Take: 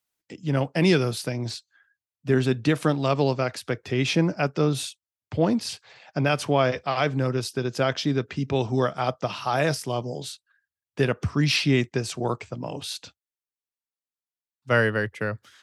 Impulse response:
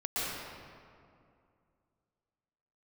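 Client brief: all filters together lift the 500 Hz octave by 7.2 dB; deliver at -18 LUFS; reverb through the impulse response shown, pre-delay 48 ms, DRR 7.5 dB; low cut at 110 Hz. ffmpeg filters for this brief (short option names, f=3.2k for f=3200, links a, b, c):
-filter_complex "[0:a]highpass=110,equalizer=f=500:t=o:g=9,asplit=2[a][b];[1:a]atrim=start_sample=2205,adelay=48[c];[b][c]afir=irnorm=-1:irlink=0,volume=-15dB[d];[a][d]amix=inputs=2:normalize=0,volume=2.5dB"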